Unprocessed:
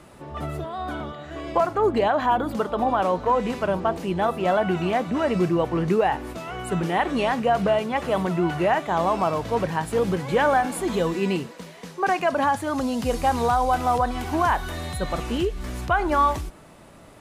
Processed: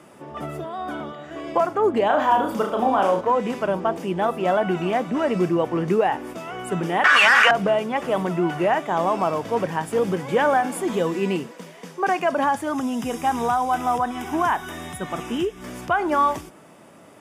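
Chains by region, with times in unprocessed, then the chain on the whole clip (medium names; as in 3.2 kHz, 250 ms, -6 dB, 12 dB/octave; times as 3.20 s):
2.06–3.21 s: treble shelf 3.3 kHz +3 dB + hard clipper -11.5 dBFS + flutter echo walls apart 5.9 m, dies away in 0.42 s
7.04–7.51 s: resonant high-pass 1.5 kHz, resonance Q 4.1 + overdrive pedal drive 20 dB, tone 3.1 kHz, clips at -8 dBFS + level flattener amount 100%
12.72–15.62 s: Butterworth band-stop 4.4 kHz, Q 5.5 + peaking EQ 540 Hz -10.5 dB 0.27 oct
whole clip: high-pass 190 Hz 12 dB/octave; bass shelf 420 Hz +3 dB; band-stop 4.1 kHz, Q 5.7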